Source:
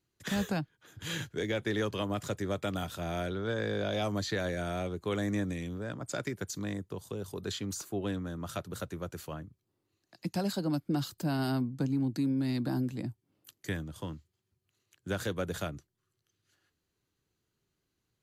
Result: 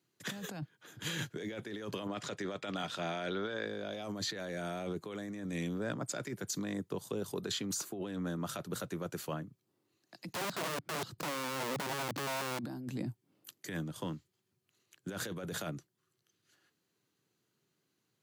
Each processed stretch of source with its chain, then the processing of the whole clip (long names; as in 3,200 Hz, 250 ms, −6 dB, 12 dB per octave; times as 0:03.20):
0:02.07–0:03.66: low-pass filter 4,300 Hz + spectral tilt +2 dB per octave
0:10.33–0:12.59: RIAA equalisation playback + downward compressor 3 to 1, threshold −35 dBFS + wrap-around overflow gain 34 dB
whole clip: high-pass filter 130 Hz 24 dB per octave; compressor whose output falls as the input rises −38 dBFS, ratio −1